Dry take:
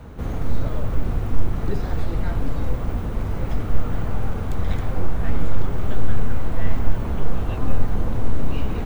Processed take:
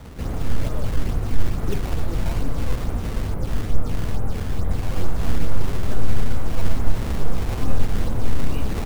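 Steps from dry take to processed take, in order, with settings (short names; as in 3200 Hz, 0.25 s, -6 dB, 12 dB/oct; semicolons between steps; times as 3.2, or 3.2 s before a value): CVSD 64 kbps; 3.34–4.92 high shelf 2000 Hz -11.5 dB; decimation with a swept rate 16×, swing 160% 2.3 Hz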